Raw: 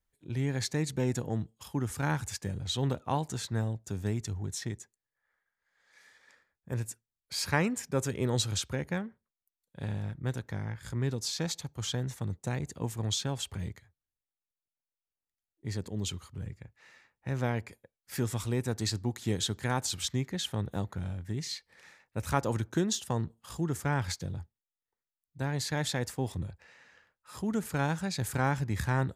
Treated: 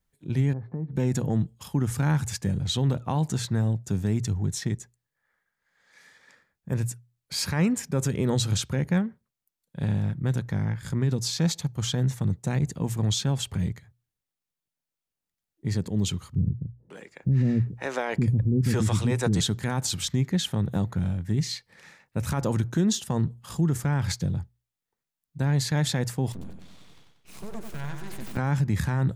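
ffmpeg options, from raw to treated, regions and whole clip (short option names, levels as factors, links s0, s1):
-filter_complex "[0:a]asettb=1/sr,asplit=3[s0][s1][s2];[s0]atrim=end=0.534[s3];[s1]atrim=start=0.53:end=0.96,asetpts=PTS-STARTPTS,afade=t=in:d=0.004:c=qsin,afade=t=out:st=0.426:d=0.004:c=qsin,lowpass=f=1100:w=0.5412,lowpass=f=1100:w=1.3066,asplit=2[s4][s5];[s5]adelay=18,volume=0.2[s6];[s4][s6]amix=inputs=2:normalize=0,atrim=end_sample=18963,acompressor=threshold=0.00708:ratio=3:attack=3.2:release=140:knee=1:detection=peak[s7];[s2]atrim=start=0.956[s8];[s3][s7]acrossfade=d=0.004:c1=hsin:c2=qsin[s9];[s9][s8]acrossfade=d=0.004:c1=qsin:c2=hsin,asettb=1/sr,asplit=3[s10][s11][s12];[s10]atrim=end=16.354[s13];[s11]atrim=start=16.35:end=19.41,asetpts=PTS-STARTPTS,afade=t=in:d=0.004:c=qsin,afade=t=out:st=3.056:d=0.004:c=qsin,equalizer=f=13000:w=2.1:g=-13,acontrast=50,acrossover=split=370[s14][s15];[s15]adelay=550[s16];[s14][s16]amix=inputs=2:normalize=0,atrim=end_sample=134946[s17];[s12]atrim=start=19.406[s18];[s13][s17]acrossfade=d=0.004:c1=hsin:c2=qsin[s19];[s19][s18]acrossfade=d=0.004:c1=qsin:c2=hsin,asettb=1/sr,asplit=3[s20][s21][s22];[s20]atrim=end=26.324[s23];[s21]atrim=start=26.32:end=28.37,asetpts=PTS-STARTPTS,afade=t=in:d=0.004:c=qsin,afade=t=out:st=2.046:d=0.004:c=qsin,acompressor=threshold=0.00447:ratio=2:attack=3.2:release=140:knee=1:detection=peak,aeval=exprs='abs(val(0))':c=same,aecho=1:1:92|184|276|368|460:0.501|0.226|0.101|0.0457|0.0206,atrim=end_sample=90405[s24];[s22]atrim=start=28.366[s25];[s23][s24]acrossfade=d=0.004:c1=hsin:c2=qsin[s26];[s26][s25]acrossfade=d=0.004:c1=qsin:c2=hsin,equalizer=f=160:w=1.1:g=8.5,bandreject=f=60:t=h:w=6,bandreject=f=120:t=h:w=6,alimiter=limit=0.1:level=0:latency=1:release=44,volume=1.68"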